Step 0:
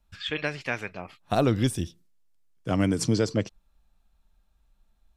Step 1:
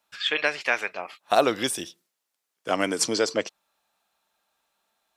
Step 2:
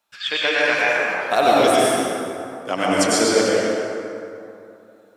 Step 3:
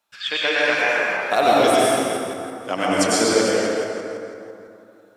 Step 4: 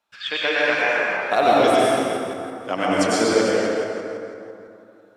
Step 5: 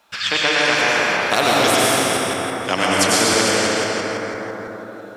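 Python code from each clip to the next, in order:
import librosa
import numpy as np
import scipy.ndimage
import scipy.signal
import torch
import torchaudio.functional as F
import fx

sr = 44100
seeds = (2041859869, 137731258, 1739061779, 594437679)

y1 = scipy.signal.sosfilt(scipy.signal.butter(2, 530.0, 'highpass', fs=sr, output='sos'), x)
y1 = F.gain(torch.from_numpy(y1), 7.0).numpy()
y2 = fx.rev_plate(y1, sr, seeds[0], rt60_s=2.8, hf_ratio=0.5, predelay_ms=85, drr_db=-7.0)
y3 = fx.reverse_delay_fb(y2, sr, ms=167, feedback_pct=46, wet_db=-10.5)
y3 = F.gain(torch.from_numpy(y3), -1.0).numpy()
y4 = fx.high_shelf(y3, sr, hz=6100.0, db=-10.5)
y5 = fx.spectral_comp(y4, sr, ratio=2.0)
y5 = F.gain(torch.from_numpy(y5), 3.5).numpy()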